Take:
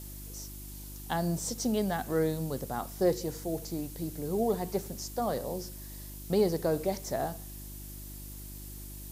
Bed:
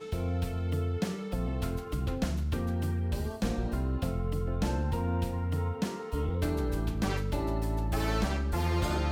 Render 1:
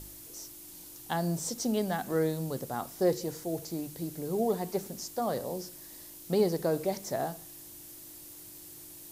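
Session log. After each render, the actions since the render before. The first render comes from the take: de-hum 50 Hz, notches 5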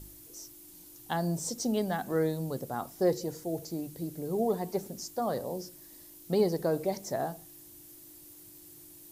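denoiser 6 dB, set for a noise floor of -49 dBFS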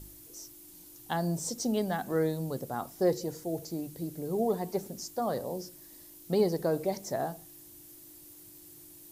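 nothing audible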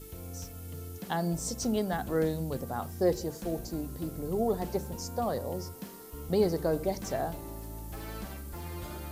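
add bed -11.5 dB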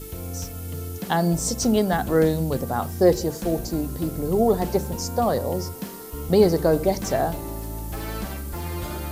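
gain +9.5 dB

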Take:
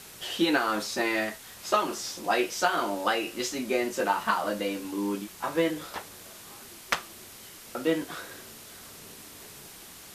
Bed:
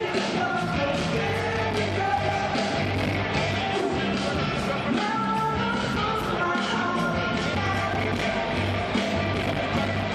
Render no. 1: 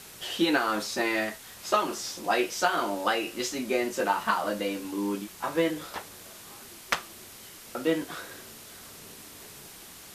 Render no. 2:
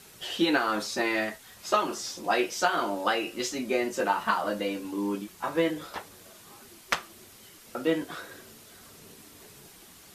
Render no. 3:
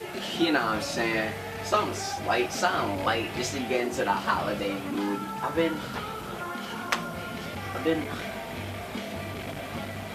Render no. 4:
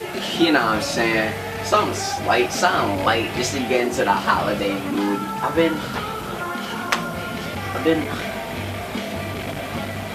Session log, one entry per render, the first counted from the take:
nothing audible
denoiser 6 dB, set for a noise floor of -47 dBFS
add bed -10 dB
gain +7.5 dB; limiter -3 dBFS, peak gain reduction 1.5 dB

